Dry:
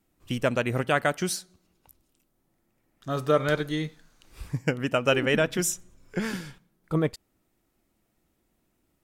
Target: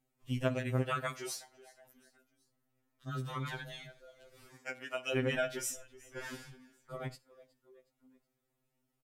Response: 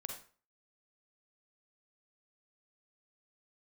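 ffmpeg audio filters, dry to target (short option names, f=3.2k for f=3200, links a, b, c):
-filter_complex "[0:a]asettb=1/sr,asplit=3[a][b][c];[a]atrim=end=4.464[d];[b]atrim=start=4.46:end=5.15,asetpts=PTS-STARTPTS,afade=t=in:d=0.004:c=qsin,afade=t=out:st=0.686:d=0.004:c=qsin,highpass=670[e];[c]atrim=start=5.146[f];[d][e]acrossfade=d=0.004:c1=hsin:c2=qsin[g];[g][f]acrossfade=d=0.004:c1=qsin:c2=hsin,asplit=4[h][i][j][k];[i]adelay=367,afreqshift=33,volume=-23.5dB[l];[j]adelay=734,afreqshift=66,volume=-29.3dB[m];[k]adelay=1101,afreqshift=99,volume=-35.2dB[n];[h][l][m][n]amix=inputs=4:normalize=0,asplit=2[o][p];[1:a]atrim=start_sample=2205,afade=t=out:st=0.15:d=0.01,atrim=end_sample=7056,asetrate=43218,aresample=44100[q];[p][q]afir=irnorm=-1:irlink=0,volume=-10dB[r];[o][r]amix=inputs=2:normalize=0,afftfilt=real='re*2.45*eq(mod(b,6),0)':imag='im*2.45*eq(mod(b,6),0)':win_size=2048:overlap=0.75,volume=-9dB"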